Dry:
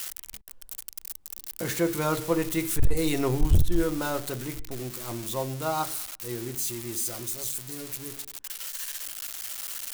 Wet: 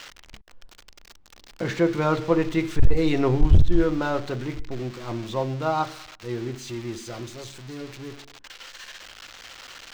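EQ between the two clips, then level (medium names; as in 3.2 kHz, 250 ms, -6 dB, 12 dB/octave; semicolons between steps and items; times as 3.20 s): distance through air 190 m; +5.0 dB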